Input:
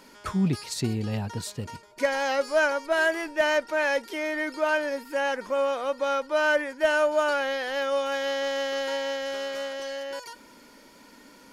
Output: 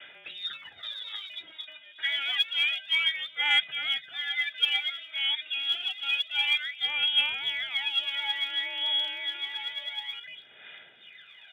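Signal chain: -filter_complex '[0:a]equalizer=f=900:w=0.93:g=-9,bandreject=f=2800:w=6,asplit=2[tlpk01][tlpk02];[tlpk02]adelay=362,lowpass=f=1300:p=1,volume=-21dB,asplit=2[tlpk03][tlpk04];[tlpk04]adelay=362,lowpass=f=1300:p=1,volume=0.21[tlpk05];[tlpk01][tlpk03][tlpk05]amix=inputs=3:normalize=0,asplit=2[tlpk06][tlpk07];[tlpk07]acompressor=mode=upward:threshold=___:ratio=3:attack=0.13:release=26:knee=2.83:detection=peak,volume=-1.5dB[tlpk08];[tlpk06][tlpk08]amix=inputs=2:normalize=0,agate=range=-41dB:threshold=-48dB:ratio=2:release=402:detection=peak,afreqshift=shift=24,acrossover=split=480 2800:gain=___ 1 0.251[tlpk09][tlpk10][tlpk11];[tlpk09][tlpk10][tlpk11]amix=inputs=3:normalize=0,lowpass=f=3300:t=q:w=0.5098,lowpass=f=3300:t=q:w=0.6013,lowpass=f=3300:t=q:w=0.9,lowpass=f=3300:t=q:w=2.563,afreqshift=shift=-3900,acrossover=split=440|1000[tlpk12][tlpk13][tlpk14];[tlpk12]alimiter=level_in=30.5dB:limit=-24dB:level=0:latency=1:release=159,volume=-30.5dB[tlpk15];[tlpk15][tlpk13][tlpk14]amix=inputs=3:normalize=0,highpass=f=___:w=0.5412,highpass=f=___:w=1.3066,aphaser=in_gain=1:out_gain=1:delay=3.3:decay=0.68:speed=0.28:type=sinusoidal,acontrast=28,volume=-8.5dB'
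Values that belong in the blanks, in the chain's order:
-33dB, 0.1, 84, 84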